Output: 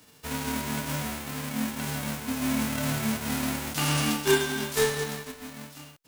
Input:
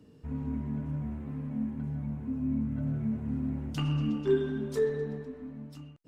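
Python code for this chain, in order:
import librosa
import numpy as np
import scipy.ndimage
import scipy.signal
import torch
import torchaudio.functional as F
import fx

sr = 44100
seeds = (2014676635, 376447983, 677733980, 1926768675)

p1 = fx.envelope_flatten(x, sr, power=0.3)
p2 = np.sign(p1) * np.maximum(np.abs(p1) - 10.0 ** (-39.5 / 20.0), 0.0)
y = p1 + (p2 * 10.0 ** (-5.0 / 20.0))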